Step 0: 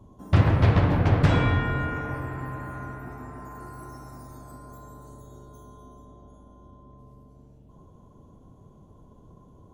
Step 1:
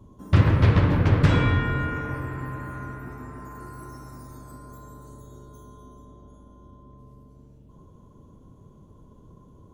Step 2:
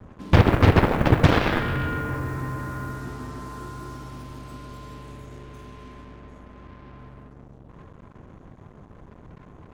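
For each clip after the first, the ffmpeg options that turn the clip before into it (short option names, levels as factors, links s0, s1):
-af "equalizer=f=730:t=o:w=0.43:g=-8.5,volume=1.19"
-af "aemphasis=mode=reproduction:type=50fm,acrusher=bits=7:mix=0:aa=0.5,aeval=exprs='0.501*(cos(1*acos(clip(val(0)/0.501,-1,1)))-cos(1*PI/2))+0.178*(cos(7*acos(clip(val(0)/0.501,-1,1)))-cos(7*PI/2))':c=same"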